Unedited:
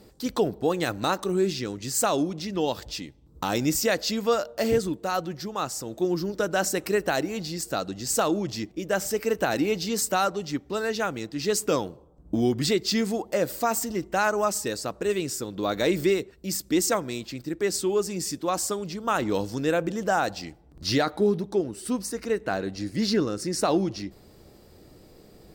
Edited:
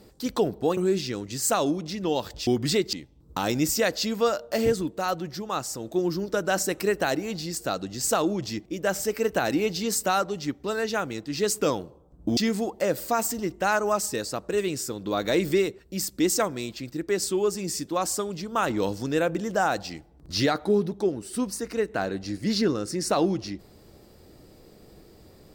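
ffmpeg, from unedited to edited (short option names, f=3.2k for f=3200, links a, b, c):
-filter_complex "[0:a]asplit=5[a][b][c][d][e];[a]atrim=end=0.772[f];[b]atrim=start=1.288:end=2.992[g];[c]atrim=start=12.428:end=12.892[h];[d]atrim=start=2.988:end=12.432[i];[e]atrim=start=12.888[j];[f][g]acrossfade=d=0.004:c1=hsin:c2=hsin[k];[k][h]acrossfade=d=0.004:c1=hsin:c2=hsin[l];[l][i]acrossfade=d=0.004:c1=hsin:c2=hsin[m];[m][j]acrossfade=d=0.004:c1=hsin:c2=hsin"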